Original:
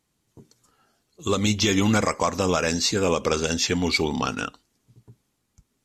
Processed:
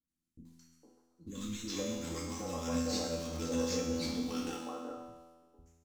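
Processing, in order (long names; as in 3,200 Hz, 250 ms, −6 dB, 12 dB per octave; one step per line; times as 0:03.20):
peak hold with a decay on every bin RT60 0.34 s
noise gate −57 dBFS, range −12 dB
parametric band 1,800 Hz −9.5 dB 1.9 octaves
mains-hum notches 50/100 Hz
comb filter 3.8 ms, depth 69%
reversed playback
downward compressor 10 to 1, threshold −27 dBFS, peak gain reduction 12.5 dB
reversed playback
tuned comb filter 83 Hz, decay 1.4 s, harmonics all, mix 90%
in parallel at −8 dB: sample-rate reduction 4,400 Hz, jitter 20%
on the sum: three-band delay without the direct sound lows, highs, mids 80/460 ms, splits 320/1,200 Hz
level +7 dB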